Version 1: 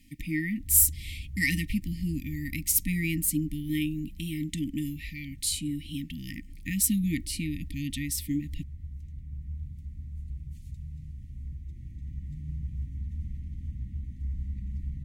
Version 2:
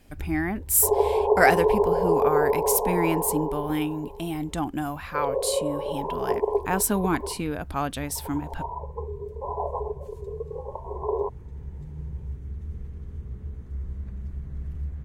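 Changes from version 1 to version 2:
first sound: entry -0.50 s; second sound: entry -0.80 s; master: remove brick-wall FIR band-stop 320–1800 Hz

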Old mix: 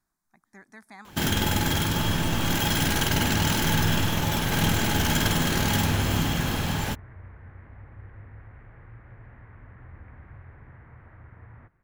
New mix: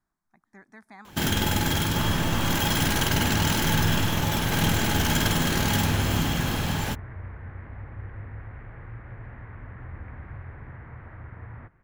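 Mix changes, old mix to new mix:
speech: add high shelf 4300 Hz -11.5 dB; second sound +6.5 dB

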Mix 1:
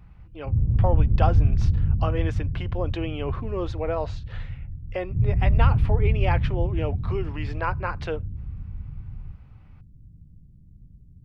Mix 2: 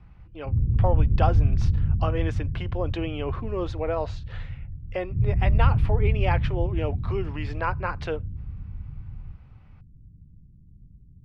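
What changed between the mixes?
background: add steep low-pass 500 Hz 48 dB/oct; reverb: off

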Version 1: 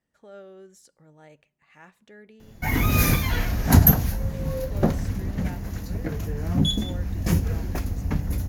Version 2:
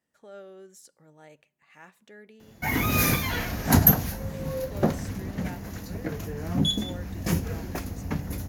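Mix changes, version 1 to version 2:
speech: add high shelf 8600 Hz +7.5 dB; master: add HPF 170 Hz 6 dB/oct

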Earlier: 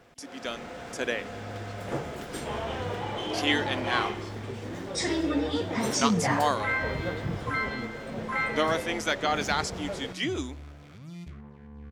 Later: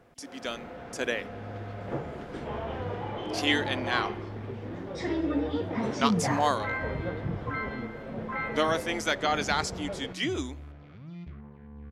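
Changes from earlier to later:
first sound: add tape spacing loss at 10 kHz 28 dB; second sound: add air absorption 280 m

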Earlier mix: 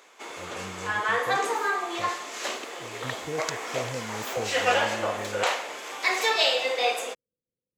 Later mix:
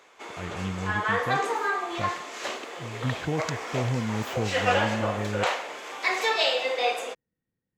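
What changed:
speech: remove ladder low-pass 570 Hz, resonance 70%; master: add high shelf 5400 Hz -8 dB

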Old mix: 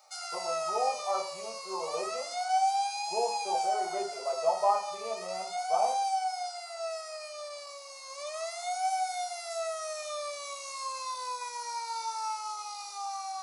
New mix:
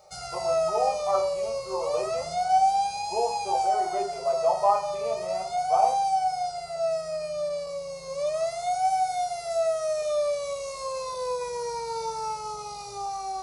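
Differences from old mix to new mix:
speech +4.0 dB; background: remove HPF 870 Hz 24 dB/oct

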